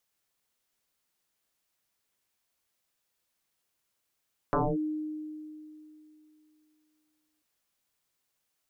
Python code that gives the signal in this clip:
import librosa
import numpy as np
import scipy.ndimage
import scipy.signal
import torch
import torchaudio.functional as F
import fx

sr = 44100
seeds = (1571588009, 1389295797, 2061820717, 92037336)

y = fx.fm2(sr, length_s=2.89, level_db=-22.0, carrier_hz=307.0, ratio=0.47, index=7.5, index_s=0.24, decay_s=2.95, shape='linear')